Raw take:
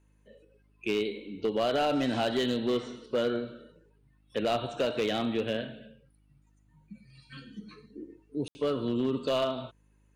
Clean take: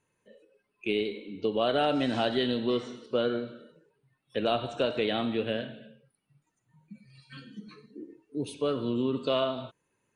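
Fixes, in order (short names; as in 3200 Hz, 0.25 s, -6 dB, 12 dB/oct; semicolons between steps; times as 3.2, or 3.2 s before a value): clip repair -21.5 dBFS; de-hum 51.6 Hz, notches 6; room tone fill 8.48–8.55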